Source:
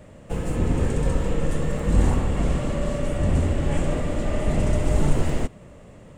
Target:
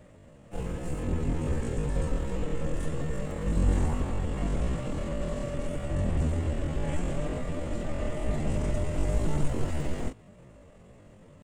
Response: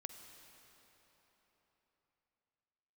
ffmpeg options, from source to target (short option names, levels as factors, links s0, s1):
-af "atempo=0.54,volume=0.473"